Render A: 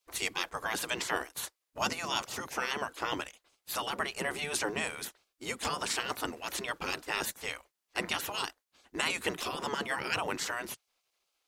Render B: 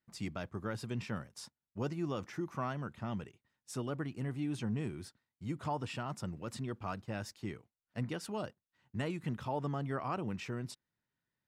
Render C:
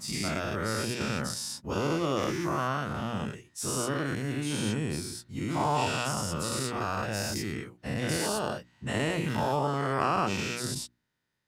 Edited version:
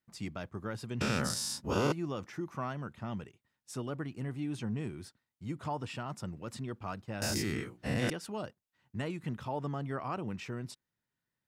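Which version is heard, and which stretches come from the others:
B
1.01–1.92 from C
7.22–8.1 from C
not used: A

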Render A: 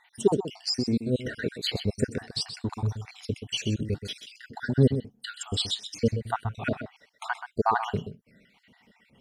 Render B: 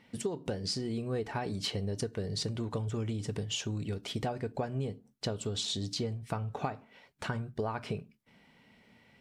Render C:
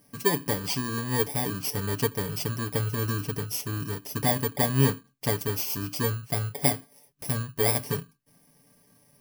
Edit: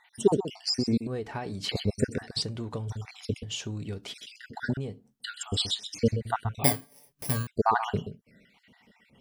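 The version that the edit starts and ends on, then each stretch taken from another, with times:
A
1.07–1.69 from B
2.42–2.9 from B
3.43–4.14 from B
4.77–5.2 from B
6.64–7.47 from C

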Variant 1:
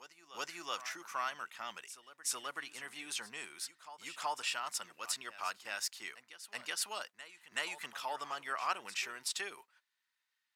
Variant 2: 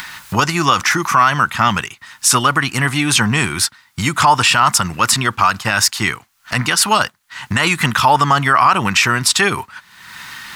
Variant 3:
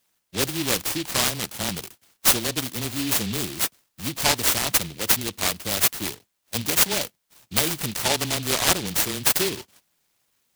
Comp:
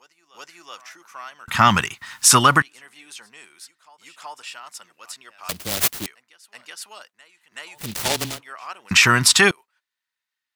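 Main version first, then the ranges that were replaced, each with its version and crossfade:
1
1.48–2.62 from 2
5.49–6.06 from 3
7.83–8.33 from 3, crossfade 0.16 s
8.91–9.51 from 2

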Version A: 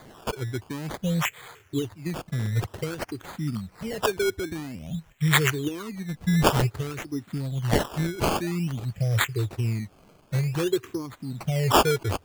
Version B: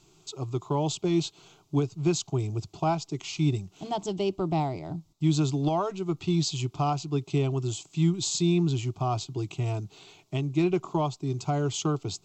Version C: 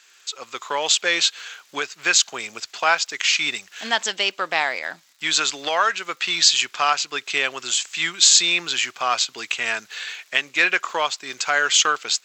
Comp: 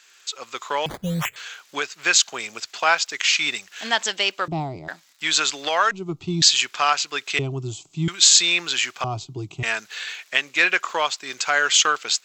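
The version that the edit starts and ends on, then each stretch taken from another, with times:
C
0.86–1.36 from A
4.48–4.88 from B
5.91–6.42 from B
7.39–8.08 from B
9.04–9.63 from B

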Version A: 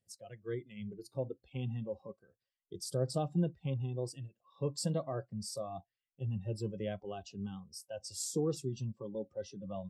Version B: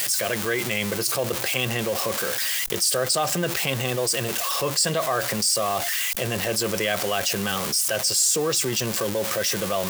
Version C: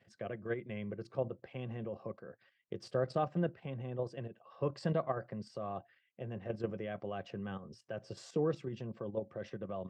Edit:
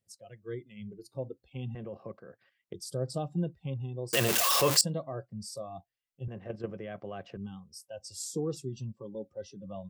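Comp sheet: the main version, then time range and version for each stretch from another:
A
1.75–2.74 from C
4.13–4.81 from B
6.28–7.37 from C

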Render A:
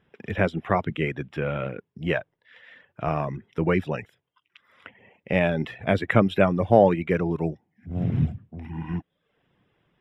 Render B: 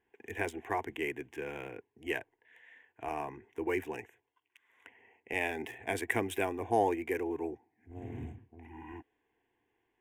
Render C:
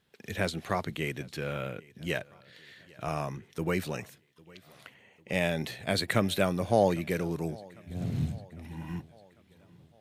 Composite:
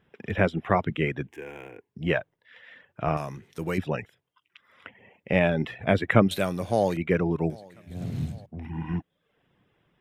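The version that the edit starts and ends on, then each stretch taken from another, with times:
A
1.27–1.89 from B
3.17–3.78 from C
6.31–6.97 from C
7.5–8.46 from C

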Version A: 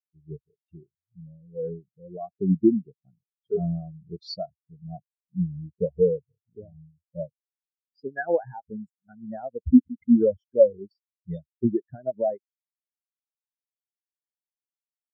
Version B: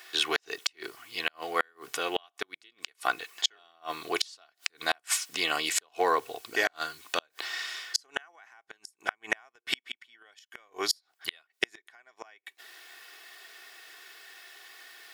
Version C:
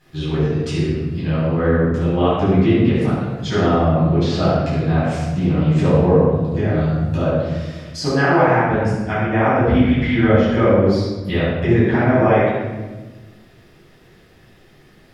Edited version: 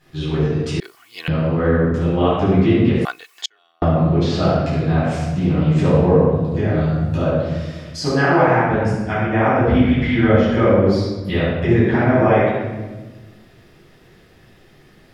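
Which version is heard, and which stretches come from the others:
C
0.8–1.28 from B
3.05–3.82 from B
not used: A

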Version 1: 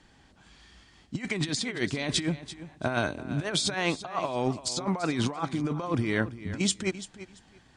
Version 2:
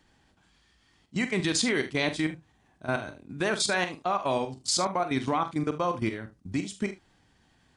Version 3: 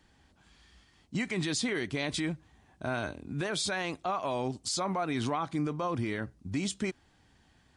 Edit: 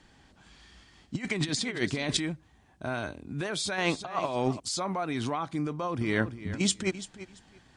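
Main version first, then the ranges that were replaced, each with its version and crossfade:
1
2.17–3.78 from 3
4.6–6.01 from 3
not used: 2

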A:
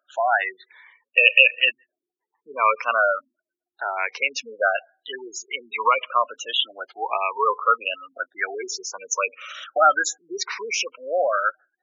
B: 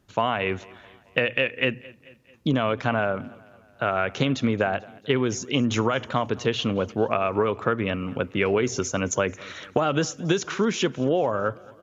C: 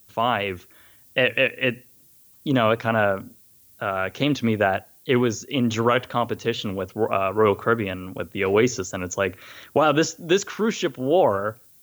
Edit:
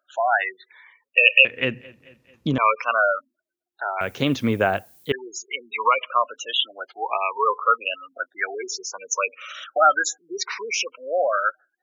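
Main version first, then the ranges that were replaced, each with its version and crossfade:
A
1.45–2.58 from B
4.01–5.12 from C

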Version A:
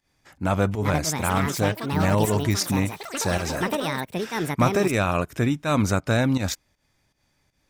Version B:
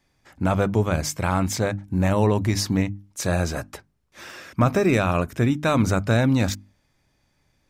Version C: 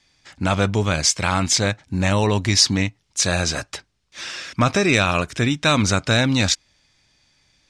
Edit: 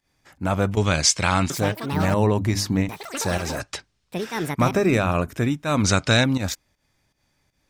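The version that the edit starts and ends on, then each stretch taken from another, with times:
A
0.77–1.5 from C
2.14–2.89 from B
3.6–4.12 from C
4.71–5.33 from B
5.84–6.24 from C

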